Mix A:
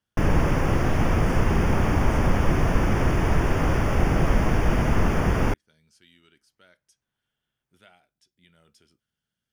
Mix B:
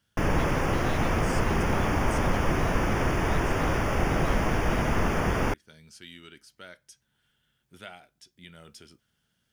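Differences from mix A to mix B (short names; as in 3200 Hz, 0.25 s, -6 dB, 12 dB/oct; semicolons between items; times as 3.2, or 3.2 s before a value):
speech +11.0 dB; background: add low shelf 280 Hz -6.5 dB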